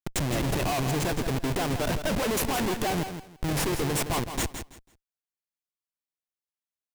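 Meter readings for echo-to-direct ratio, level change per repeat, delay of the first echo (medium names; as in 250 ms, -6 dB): -9.0 dB, -13.0 dB, 165 ms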